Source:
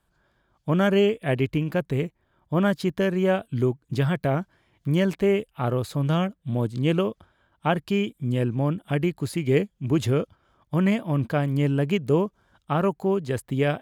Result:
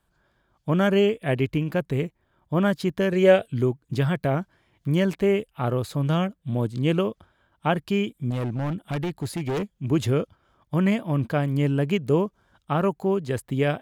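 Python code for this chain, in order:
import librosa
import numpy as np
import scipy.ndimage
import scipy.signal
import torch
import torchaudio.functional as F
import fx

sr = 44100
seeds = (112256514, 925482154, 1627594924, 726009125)

y = fx.graphic_eq_10(x, sr, hz=(125, 250, 500, 1000, 2000, 4000, 8000), db=(5, -5, 11, -5, 7, 5, 5), at=(3.12, 3.52))
y = fx.overload_stage(y, sr, gain_db=23.5, at=(8.3, 9.71))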